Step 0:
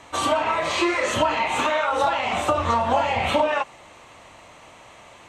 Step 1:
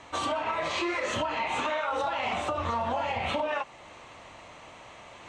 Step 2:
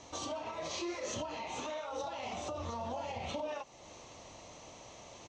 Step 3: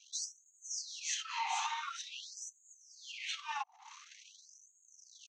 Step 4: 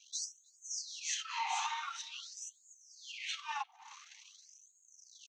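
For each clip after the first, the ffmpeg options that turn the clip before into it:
-af "lowpass=6.8k,alimiter=limit=-18dB:level=0:latency=1:release=274,areverse,acompressor=mode=upward:threshold=-41dB:ratio=2.5,areverse,volume=-2.5dB"
-af "alimiter=level_in=2.5dB:limit=-24dB:level=0:latency=1:release=284,volume=-2.5dB,firequalizer=gain_entry='entry(490,0);entry(1500,-11);entry(6000,10);entry(9200,-11)':delay=0.05:min_phase=1,volume=-1.5dB"
-af "highpass=f=290:t=q:w=3.6,anlmdn=0.00398,afftfilt=real='re*gte(b*sr/1024,710*pow(6500/710,0.5+0.5*sin(2*PI*0.47*pts/sr)))':imag='im*gte(b*sr/1024,710*pow(6500/710,0.5+0.5*sin(2*PI*0.47*pts/sr)))':win_size=1024:overlap=0.75,volume=6.5dB"
-filter_complex "[0:a]asplit=2[a][b];[b]adelay=310,highpass=300,lowpass=3.4k,asoftclip=type=hard:threshold=-33dB,volume=-23dB[c];[a][c]amix=inputs=2:normalize=0"

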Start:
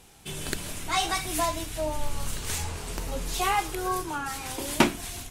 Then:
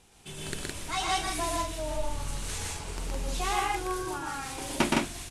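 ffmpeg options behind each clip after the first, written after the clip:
-af "lowpass=f=11k:w=0.5412,lowpass=f=11k:w=1.3066,aecho=1:1:119.5|163.3:0.794|0.794,volume=-6dB"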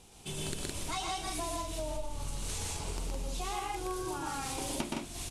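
-af "equalizer=f=1.7k:t=o:w=0.91:g=-7,acompressor=threshold=-36dB:ratio=10,volume=3.5dB"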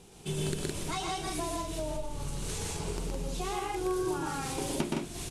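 -af "equalizer=f=160:t=o:w=0.67:g=9,equalizer=f=400:t=o:w=0.67:g=8,equalizer=f=1.6k:t=o:w=0.67:g=3"

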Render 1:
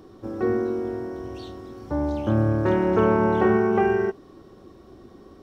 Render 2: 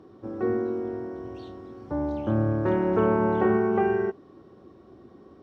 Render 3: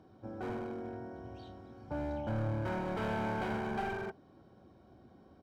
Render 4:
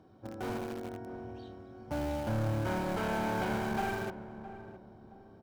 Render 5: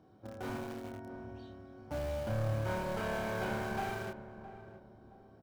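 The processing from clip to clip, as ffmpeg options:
-af "highpass=83,aemphasis=mode=reproduction:type=75kf,volume=-2.5dB"
-af "asoftclip=type=hard:threshold=-25dB,aecho=1:1:1.3:0.54,volume=-7dB"
-filter_complex "[0:a]asplit=2[a][b];[b]acrusher=bits=5:mix=0:aa=0.000001,volume=-9dB[c];[a][c]amix=inputs=2:normalize=0,asplit=2[d][e];[e]adelay=665,lowpass=f=880:p=1,volume=-11.5dB,asplit=2[f][g];[g]adelay=665,lowpass=f=880:p=1,volume=0.39,asplit=2[h][i];[i]adelay=665,lowpass=f=880:p=1,volume=0.39,asplit=2[j][k];[k]adelay=665,lowpass=f=880:p=1,volume=0.39[l];[d][f][h][j][l]amix=inputs=5:normalize=0"
-filter_complex "[0:a]asplit=2[a][b];[b]adelay=29,volume=-4dB[c];[a][c]amix=inputs=2:normalize=0,volume=-4dB"

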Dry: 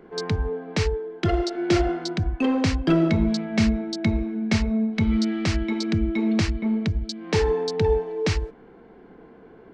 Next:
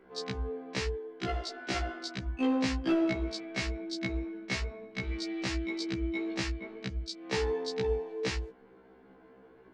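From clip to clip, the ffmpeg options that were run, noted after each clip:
-af "lowshelf=f=490:g=-6,afftfilt=real='re*1.73*eq(mod(b,3),0)':imag='im*1.73*eq(mod(b,3),0)':win_size=2048:overlap=0.75,volume=-3.5dB"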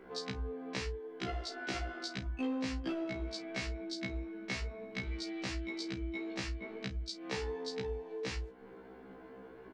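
-filter_complex "[0:a]acompressor=threshold=-45dB:ratio=2.5,asplit=2[a][b];[b]adelay=35,volume=-12dB[c];[a][c]amix=inputs=2:normalize=0,volume=4.5dB"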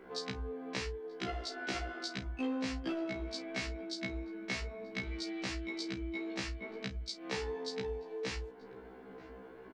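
-filter_complex "[0:a]lowshelf=f=190:g=-3.5,asplit=2[a][b];[b]adelay=932.9,volume=-17dB,highshelf=f=4k:g=-21[c];[a][c]amix=inputs=2:normalize=0,volume=1dB"

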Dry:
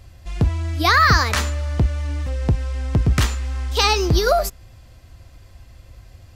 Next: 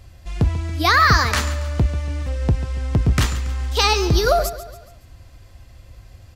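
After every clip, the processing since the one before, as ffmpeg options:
-af "aecho=1:1:140|280|420|560:0.2|0.0918|0.0422|0.0194"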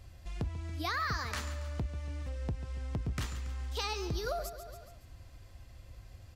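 -af "acompressor=threshold=-33dB:ratio=2,volume=-8dB"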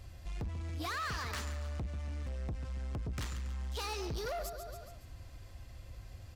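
-af "asoftclip=type=tanh:threshold=-37dB,volume=2.5dB"

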